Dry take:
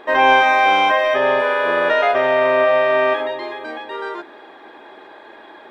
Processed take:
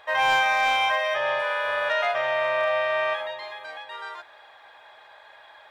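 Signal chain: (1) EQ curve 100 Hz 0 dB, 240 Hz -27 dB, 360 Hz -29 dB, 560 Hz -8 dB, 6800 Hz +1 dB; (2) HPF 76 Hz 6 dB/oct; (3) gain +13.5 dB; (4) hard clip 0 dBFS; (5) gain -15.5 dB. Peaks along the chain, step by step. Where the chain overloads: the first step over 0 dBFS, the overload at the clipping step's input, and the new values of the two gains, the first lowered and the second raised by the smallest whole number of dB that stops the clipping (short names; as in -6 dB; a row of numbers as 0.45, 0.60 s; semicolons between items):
-7.0, -7.5, +6.0, 0.0, -15.5 dBFS; step 3, 6.0 dB; step 3 +7.5 dB, step 5 -9.5 dB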